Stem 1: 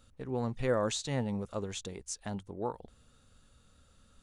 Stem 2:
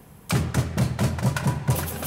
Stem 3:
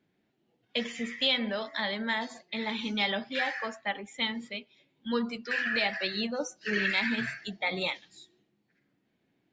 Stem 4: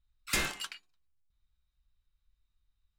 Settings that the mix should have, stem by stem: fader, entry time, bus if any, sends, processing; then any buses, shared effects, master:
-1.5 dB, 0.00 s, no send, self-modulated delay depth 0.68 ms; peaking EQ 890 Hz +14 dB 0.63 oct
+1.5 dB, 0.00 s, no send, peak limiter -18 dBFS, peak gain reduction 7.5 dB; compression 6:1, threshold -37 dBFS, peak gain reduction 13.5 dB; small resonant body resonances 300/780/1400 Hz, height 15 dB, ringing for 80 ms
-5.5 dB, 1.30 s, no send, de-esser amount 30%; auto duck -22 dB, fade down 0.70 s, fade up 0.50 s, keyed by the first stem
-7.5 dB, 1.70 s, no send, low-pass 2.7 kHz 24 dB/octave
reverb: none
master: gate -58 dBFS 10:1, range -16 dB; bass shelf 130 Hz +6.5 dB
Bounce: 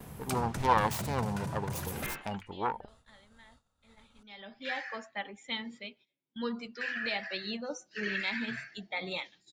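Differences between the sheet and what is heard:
stem 2: missing small resonant body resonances 300/780/1400 Hz, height 15 dB, ringing for 80 ms; master: missing bass shelf 130 Hz +6.5 dB

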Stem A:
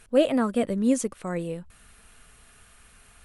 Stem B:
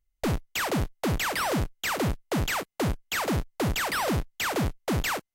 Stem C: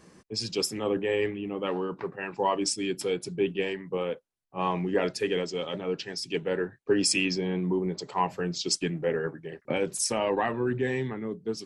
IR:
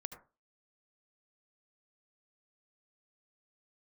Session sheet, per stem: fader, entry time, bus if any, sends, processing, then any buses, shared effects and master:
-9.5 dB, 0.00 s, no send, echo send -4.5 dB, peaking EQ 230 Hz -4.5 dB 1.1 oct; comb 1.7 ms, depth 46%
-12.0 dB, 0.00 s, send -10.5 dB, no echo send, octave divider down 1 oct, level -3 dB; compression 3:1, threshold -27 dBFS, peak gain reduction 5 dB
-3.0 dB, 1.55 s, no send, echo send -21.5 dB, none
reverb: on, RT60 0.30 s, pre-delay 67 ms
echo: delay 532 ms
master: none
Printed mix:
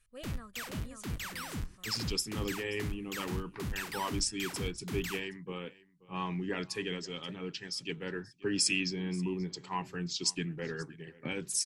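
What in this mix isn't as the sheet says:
stem A -9.5 dB -> -18.0 dB; stem B: missing compression 3:1, threshold -27 dBFS, peak gain reduction 5 dB; master: extra peaking EQ 590 Hz -13.5 dB 1.3 oct

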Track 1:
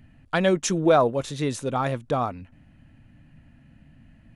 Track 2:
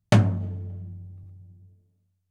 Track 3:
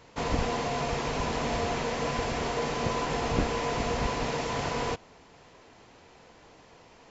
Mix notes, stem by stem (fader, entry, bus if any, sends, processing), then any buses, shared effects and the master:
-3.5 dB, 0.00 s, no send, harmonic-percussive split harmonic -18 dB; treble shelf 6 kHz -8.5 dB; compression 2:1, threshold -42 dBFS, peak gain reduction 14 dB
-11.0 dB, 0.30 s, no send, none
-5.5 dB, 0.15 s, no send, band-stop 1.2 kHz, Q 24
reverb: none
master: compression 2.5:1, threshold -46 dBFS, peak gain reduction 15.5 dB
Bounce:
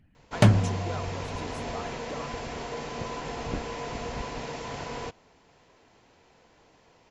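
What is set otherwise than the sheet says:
stem 2 -11.0 dB -> -0.5 dB; master: missing compression 2.5:1, threshold -46 dBFS, peak gain reduction 15.5 dB

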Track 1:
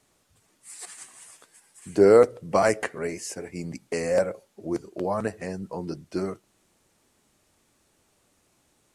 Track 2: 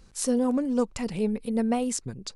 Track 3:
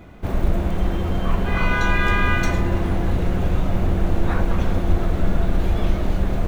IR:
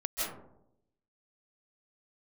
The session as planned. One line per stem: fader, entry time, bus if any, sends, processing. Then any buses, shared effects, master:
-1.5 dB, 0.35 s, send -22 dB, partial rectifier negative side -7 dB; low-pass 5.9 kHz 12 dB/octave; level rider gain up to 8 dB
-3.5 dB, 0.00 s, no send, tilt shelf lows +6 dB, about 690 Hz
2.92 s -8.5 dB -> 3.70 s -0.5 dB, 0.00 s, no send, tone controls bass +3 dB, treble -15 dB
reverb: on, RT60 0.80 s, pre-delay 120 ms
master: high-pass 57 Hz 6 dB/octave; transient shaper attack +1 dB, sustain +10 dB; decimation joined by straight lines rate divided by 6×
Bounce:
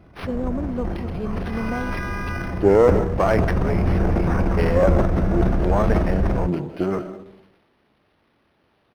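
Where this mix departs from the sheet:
stem 1: entry 0.35 s -> 0.65 s; stem 2: missing tilt shelf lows +6 dB, about 690 Hz

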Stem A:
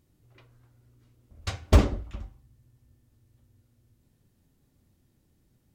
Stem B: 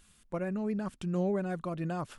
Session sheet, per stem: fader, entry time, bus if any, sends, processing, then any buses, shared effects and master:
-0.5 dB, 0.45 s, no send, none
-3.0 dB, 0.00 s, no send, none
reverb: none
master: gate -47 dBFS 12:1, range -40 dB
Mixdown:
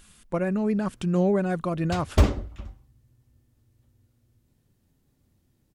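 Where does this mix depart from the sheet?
stem B -3.0 dB -> +8.0 dB; master: missing gate -47 dBFS 12:1, range -40 dB

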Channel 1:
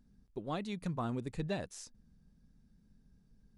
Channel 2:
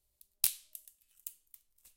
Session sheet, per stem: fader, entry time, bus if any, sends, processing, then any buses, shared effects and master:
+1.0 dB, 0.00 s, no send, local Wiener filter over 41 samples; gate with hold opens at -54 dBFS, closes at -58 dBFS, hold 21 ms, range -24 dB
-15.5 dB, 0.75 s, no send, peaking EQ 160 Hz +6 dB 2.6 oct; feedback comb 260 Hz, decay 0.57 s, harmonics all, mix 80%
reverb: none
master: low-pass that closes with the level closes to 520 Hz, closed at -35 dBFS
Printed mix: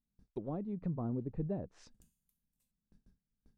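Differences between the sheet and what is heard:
stem 1: missing local Wiener filter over 41 samples; stem 2 -15.5 dB -> -9.5 dB

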